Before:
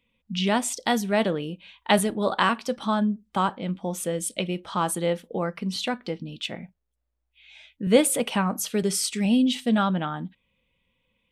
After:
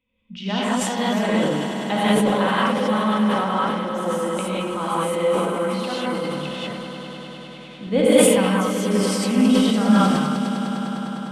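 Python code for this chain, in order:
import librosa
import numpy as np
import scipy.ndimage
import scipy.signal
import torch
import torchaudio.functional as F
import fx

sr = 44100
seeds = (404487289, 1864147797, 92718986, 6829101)

y = fx.lowpass(x, sr, hz=2700.0, slope=6)
y = y + 0.35 * np.pad(y, (int(3.9 * sr / 1000.0), 0))[:len(y)]
y = fx.echo_swell(y, sr, ms=101, loudest=5, wet_db=-13.5)
y = fx.rev_gated(y, sr, seeds[0], gate_ms=220, shape='rising', drr_db=-8.0)
y = fx.sustainer(y, sr, db_per_s=27.0)
y = F.gain(torch.from_numpy(y), -6.0).numpy()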